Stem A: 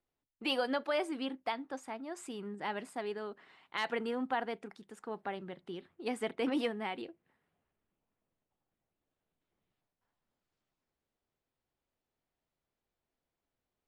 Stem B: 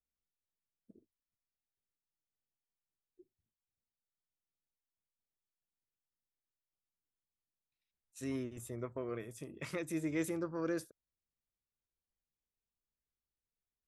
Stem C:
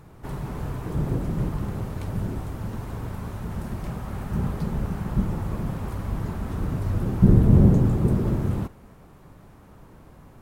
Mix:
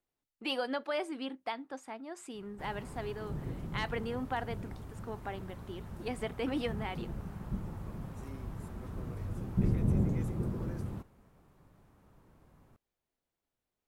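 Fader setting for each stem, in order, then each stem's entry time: -1.5 dB, -12.0 dB, -13.5 dB; 0.00 s, 0.00 s, 2.35 s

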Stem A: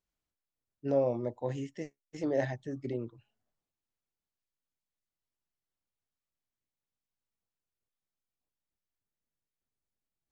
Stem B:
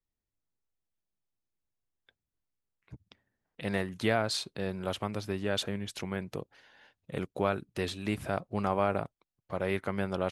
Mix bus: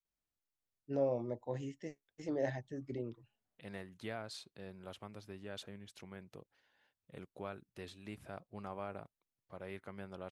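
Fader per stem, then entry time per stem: -5.5 dB, -15.5 dB; 0.05 s, 0.00 s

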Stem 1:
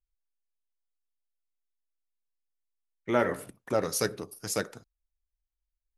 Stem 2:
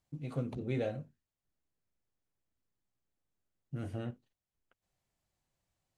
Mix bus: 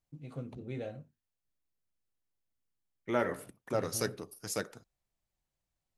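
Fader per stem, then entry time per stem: -5.0 dB, -5.5 dB; 0.00 s, 0.00 s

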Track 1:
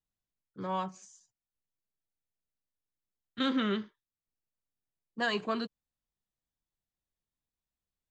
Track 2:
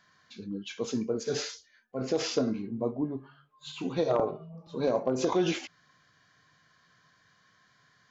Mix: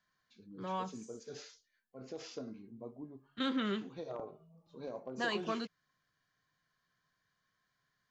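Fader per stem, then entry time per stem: -4.5 dB, -16.5 dB; 0.00 s, 0.00 s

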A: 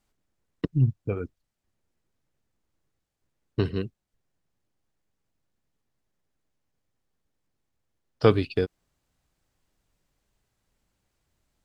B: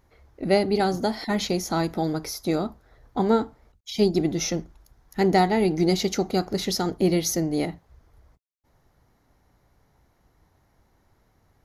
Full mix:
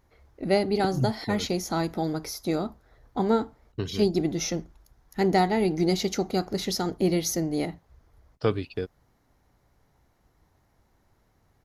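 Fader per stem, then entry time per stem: -6.0 dB, -2.5 dB; 0.20 s, 0.00 s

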